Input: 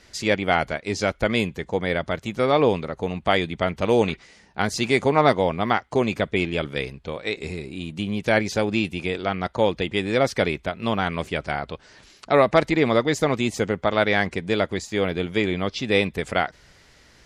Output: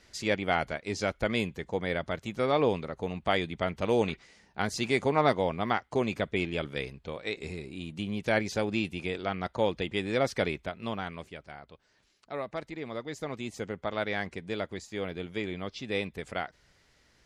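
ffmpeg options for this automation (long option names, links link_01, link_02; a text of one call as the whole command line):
ffmpeg -i in.wav -af "volume=0.5dB,afade=type=out:start_time=10.48:duration=0.93:silence=0.251189,afade=type=in:start_time=12.85:duration=0.99:silence=0.421697" out.wav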